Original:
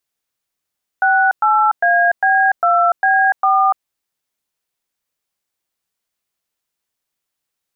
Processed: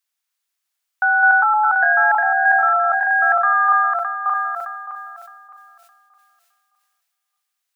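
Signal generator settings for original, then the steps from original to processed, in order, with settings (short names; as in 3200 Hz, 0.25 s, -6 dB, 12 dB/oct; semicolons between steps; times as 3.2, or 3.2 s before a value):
DTMF "68AB2B4", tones 0.292 s, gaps 0.11 s, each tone -13 dBFS
regenerating reverse delay 0.307 s, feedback 50%, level -4 dB; HPF 1000 Hz 12 dB/oct; sustainer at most 28 dB/s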